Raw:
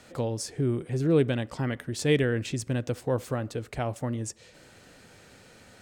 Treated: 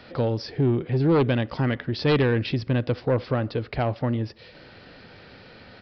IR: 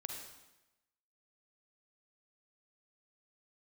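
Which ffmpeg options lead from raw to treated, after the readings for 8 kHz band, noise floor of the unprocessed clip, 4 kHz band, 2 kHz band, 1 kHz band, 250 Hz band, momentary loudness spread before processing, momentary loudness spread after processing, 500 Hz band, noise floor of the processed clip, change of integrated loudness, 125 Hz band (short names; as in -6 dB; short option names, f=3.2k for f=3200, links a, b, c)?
under -20 dB, -54 dBFS, +4.0 dB, +4.0 dB, +7.0 dB, +4.5 dB, 9 LU, 6 LU, +3.5 dB, -48 dBFS, +4.5 dB, +5.0 dB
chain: -af "aeval=exprs='0.266*sin(PI/2*2*val(0)/0.266)':c=same,aresample=11025,aresample=44100,volume=-3.5dB"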